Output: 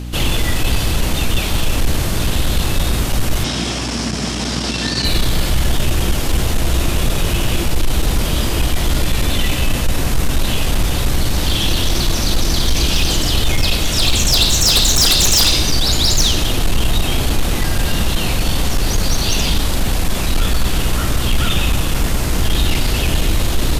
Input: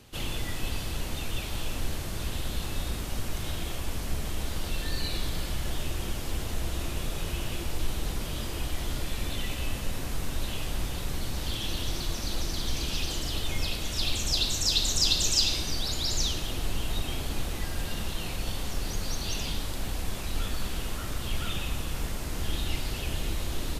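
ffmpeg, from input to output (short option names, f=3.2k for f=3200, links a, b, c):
-filter_complex "[0:a]aeval=exprs='0.299*sin(PI/2*3.16*val(0)/0.299)':c=same,asettb=1/sr,asplit=3[a][b][c];[a]atrim=end=3.444[d];[b]atrim=start=3.44:end=5.05,asetpts=PTS-STARTPTS,afade=t=in:d=0.004:c=qsin,afade=t=out:st=1.606:d=0.004:c=qsin,highpass=f=120:w=0.5412,highpass=f=120:w=1.3066,equalizer=f=240:t=q:w=4:g=8,equalizer=f=510:t=q:w=4:g=-3,equalizer=f=5.3k:t=q:w=4:g=9,lowpass=f=8.7k:w=0.5412,lowpass=f=8.7k:w=1.3066[e];[c]atrim=start=5.046[f];[d][e]acrossfade=d=0.004:c1=hsin:c2=qsin[g];[g][f]acrossfade=d=0.004:c1=qsin:c2=hsin,aeval=exprs='val(0)+0.0398*(sin(2*PI*60*n/s)+sin(2*PI*2*60*n/s)/2+sin(2*PI*3*60*n/s)/3+sin(2*PI*4*60*n/s)/4+sin(2*PI*5*60*n/s)/5)':c=same,volume=2.5dB"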